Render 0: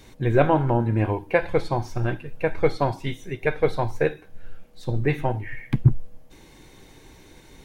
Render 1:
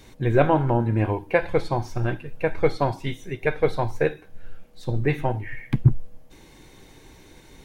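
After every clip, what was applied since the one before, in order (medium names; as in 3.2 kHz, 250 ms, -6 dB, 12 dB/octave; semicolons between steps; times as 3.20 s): no audible change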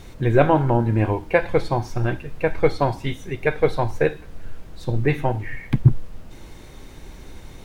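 added noise brown -41 dBFS; trim +2.5 dB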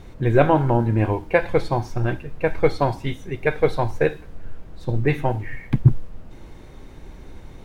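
tape noise reduction on one side only decoder only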